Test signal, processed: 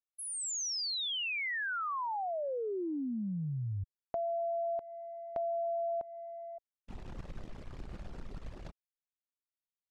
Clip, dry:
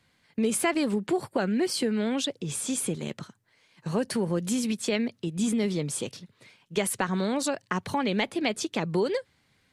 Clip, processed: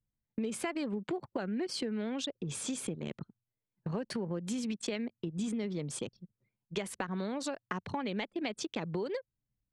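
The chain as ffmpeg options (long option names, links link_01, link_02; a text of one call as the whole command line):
ffmpeg -i in.wav -af "anlmdn=3.98,lowpass=7000,acompressor=threshold=-35dB:ratio=3" out.wav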